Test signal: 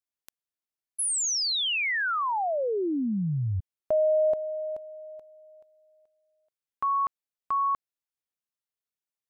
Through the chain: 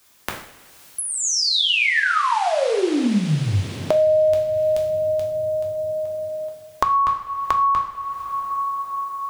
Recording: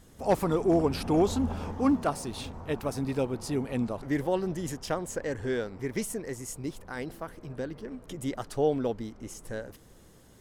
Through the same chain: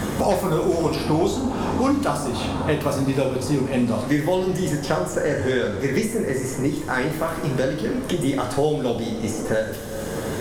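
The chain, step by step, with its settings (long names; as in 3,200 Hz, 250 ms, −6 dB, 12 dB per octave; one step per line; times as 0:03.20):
coupled-rooms reverb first 0.5 s, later 3.3 s, from −21 dB, DRR −1 dB
multiband upward and downward compressor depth 100%
level +4.5 dB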